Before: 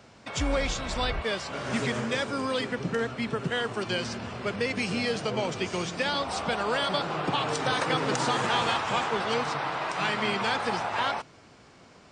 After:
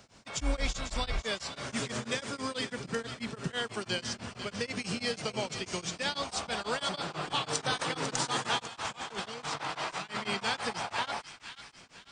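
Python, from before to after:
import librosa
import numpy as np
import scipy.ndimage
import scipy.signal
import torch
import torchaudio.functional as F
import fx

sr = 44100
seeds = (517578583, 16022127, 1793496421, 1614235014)

y = fx.peak_eq(x, sr, hz=100.0, db=-12.0, octaves=2.8)
y = fx.echo_wet_highpass(y, sr, ms=498, feedback_pct=41, hz=1700.0, wet_db=-9.0)
y = fx.over_compress(y, sr, threshold_db=-32.0, ratio=-0.5, at=(8.58, 10.16), fade=0.02)
y = fx.bass_treble(y, sr, bass_db=12, treble_db=8)
y = y * np.abs(np.cos(np.pi * 6.1 * np.arange(len(y)) / sr))
y = y * 10.0 ** (-3.0 / 20.0)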